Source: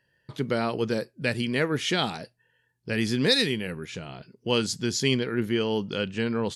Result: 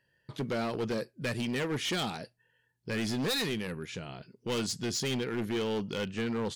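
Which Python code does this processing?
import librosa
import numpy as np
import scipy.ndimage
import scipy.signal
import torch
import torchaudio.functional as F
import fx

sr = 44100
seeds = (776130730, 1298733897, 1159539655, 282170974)

y = np.clip(x, -10.0 ** (-25.0 / 20.0), 10.0 ** (-25.0 / 20.0))
y = y * librosa.db_to_amplitude(-3.0)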